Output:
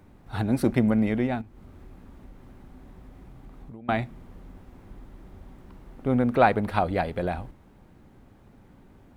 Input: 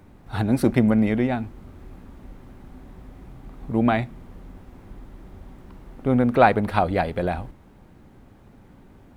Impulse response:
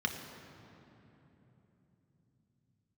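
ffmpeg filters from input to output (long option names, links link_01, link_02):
-filter_complex "[0:a]asettb=1/sr,asplit=3[link_01][link_02][link_03];[link_01]atrim=end=1.414[link_04];[link_02]atrim=start=1.41:end=3.89,asetpts=PTS-STARTPTS,afade=type=in:duration=0.004:curve=qsin,afade=type=out:start_time=2.476:duration=0.004:curve=qsin,acompressor=threshold=-37dB:ratio=20[link_05];[link_03]atrim=start=3.886[link_06];[link_04][link_05]acrossfade=duration=0.004:curve1=hsin:curve2=qsin[link_07];[link_07][link_06]acrossfade=duration=0.004:curve1=qsin:curve2=hsin,volume=-3.5dB"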